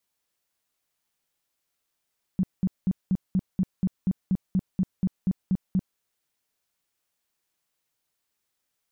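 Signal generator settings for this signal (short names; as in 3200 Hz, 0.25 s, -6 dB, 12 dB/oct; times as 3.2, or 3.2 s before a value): tone bursts 187 Hz, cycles 8, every 0.24 s, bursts 15, -19 dBFS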